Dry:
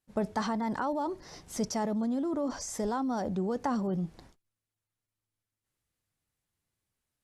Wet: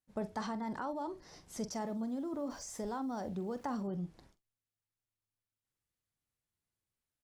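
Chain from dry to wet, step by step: 1.72–3.83 sample gate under -51 dBFS; doubler 45 ms -13 dB; gain -7.5 dB

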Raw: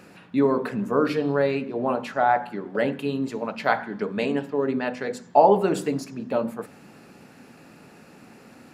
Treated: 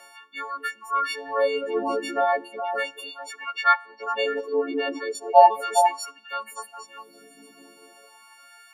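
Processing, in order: frequency quantiser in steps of 4 st; LFO high-pass sine 0.37 Hz 320–1500 Hz; on a send: delay with a stepping band-pass 0.202 s, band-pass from 340 Hz, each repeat 1.4 oct, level -2 dB; on the sum: reverb removal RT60 0.9 s; 3.56–5.15 three-band isolator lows -22 dB, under 260 Hz, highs -17 dB, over 6300 Hz; gain -4.5 dB

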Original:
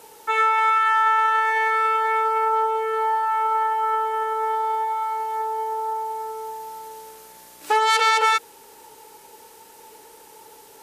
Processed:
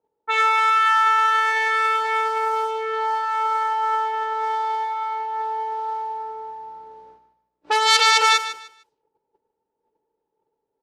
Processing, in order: gate -42 dBFS, range -24 dB; low-pass opened by the level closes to 600 Hz, open at -16 dBFS; bell 4700 Hz +12 dB 1.9 oct; on a send: feedback echo 0.151 s, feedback 25%, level -12.5 dB; on the sum: gain -2.5 dB

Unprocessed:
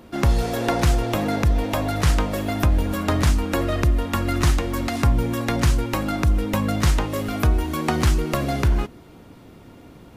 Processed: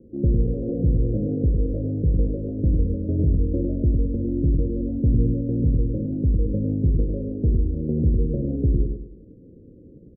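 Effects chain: steep low-pass 530 Hz 72 dB/oct; dynamic EQ 170 Hz, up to +3 dB, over -29 dBFS, Q 0.99; feedback echo 0.104 s, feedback 36%, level -4.5 dB; gain -2.5 dB

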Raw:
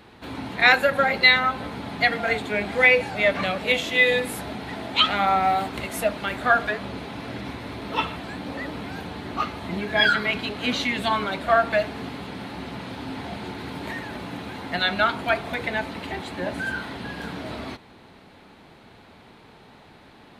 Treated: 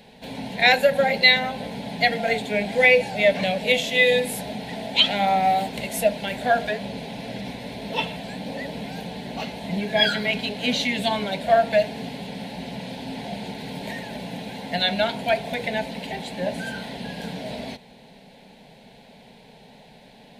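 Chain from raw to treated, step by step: fixed phaser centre 330 Hz, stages 6; gain +4 dB

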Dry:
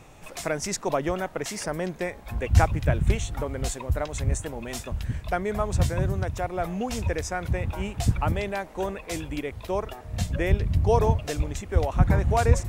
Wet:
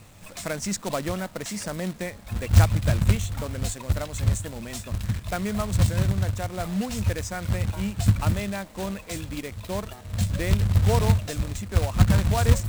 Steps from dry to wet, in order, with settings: companded quantiser 4-bit; thirty-one-band EQ 100 Hz +11 dB, 200 Hz +9 dB, 400 Hz -5 dB, 800 Hz -4 dB, 4000 Hz +3 dB, 8000 Hz +4 dB; gain -2.5 dB

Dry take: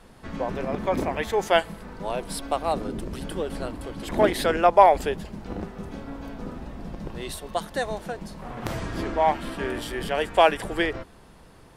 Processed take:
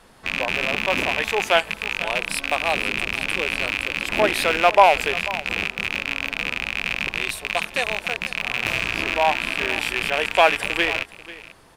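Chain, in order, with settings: rattling part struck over -39 dBFS, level -13 dBFS; low shelf 490 Hz -9 dB; on a send: echo 0.49 s -17.5 dB; on the sum: gain +4 dB

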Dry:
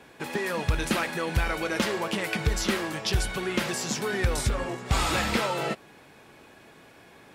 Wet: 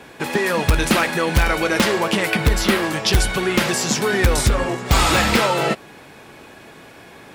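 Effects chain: 2.3–2.83 bell 6400 Hz -6 dB 0.77 oct; in parallel at -7 dB: wrapped overs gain 15.5 dB; on the sum: gain +6.5 dB

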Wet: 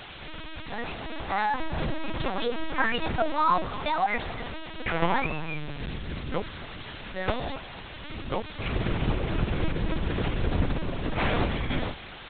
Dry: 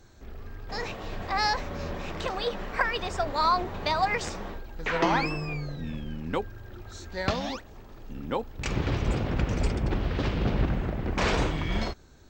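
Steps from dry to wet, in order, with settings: 1.6–3.61 low shelf 110 Hz +10 dB; requantised 6-bit, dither triangular; speakerphone echo 0.26 s, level -15 dB; LPC vocoder at 8 kHz pitch kept

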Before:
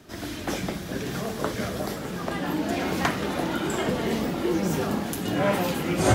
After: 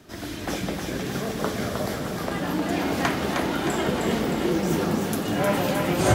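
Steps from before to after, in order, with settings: split-band echo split 550 Hz, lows 0.198 s, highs 0.31 s, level -4 dB

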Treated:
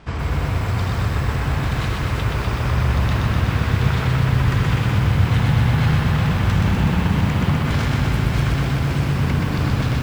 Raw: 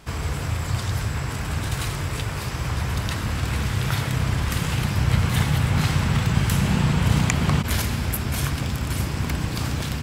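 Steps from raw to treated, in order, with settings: high shelf 4600 Hz -8.5 dB; limiter -16 dBFS, peak gain reduction 11 dB; air absorption 86 m; lo-fi delay 0.125 s, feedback 80%, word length 8-bit, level -3 dB; gain +3.5 dB

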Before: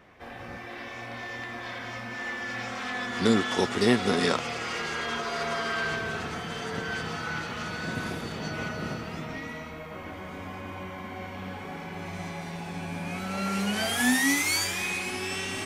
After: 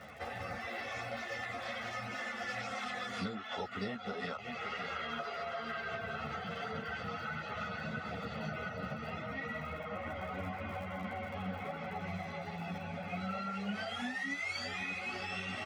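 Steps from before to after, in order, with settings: HPF 93 Hz; echo 0.572 s -14.5 dB; reverb removal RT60 0.56 s; LPF 12000 Hz 12 dB/oct, from 3.24 s 3200 Hz; crackle 48/s -45 dBFS; comb 1.5 ms, depth 65%; compressor 8:1, threshold -42 dBFS, peak gain reduction 22.5 dB; ensemble effect; gain +8 dB

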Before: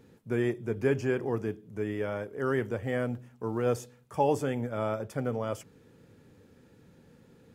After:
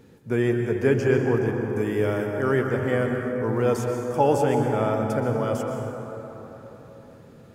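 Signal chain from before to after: 1.73–2.27 high shelf 6000 Hz +10.5 dB; plate-style reverb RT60 4 s, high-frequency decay 0.35×, pre-delay 0.11 s, DRR 2.5 dB; gain +5.5 dB

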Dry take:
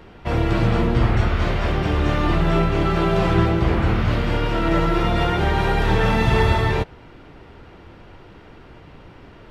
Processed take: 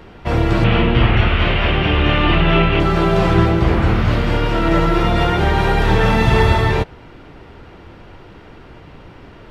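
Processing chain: 0.64–2.8 synth low-pass 2900 Hz, resonance Q 3.4; gain +4 dB

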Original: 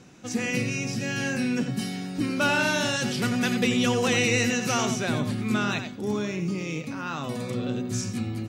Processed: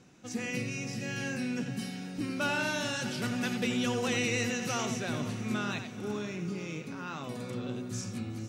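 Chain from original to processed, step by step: diffused feedback echo 0.482 s, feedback 50%, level -13.5 dB; gain -7.5 dB

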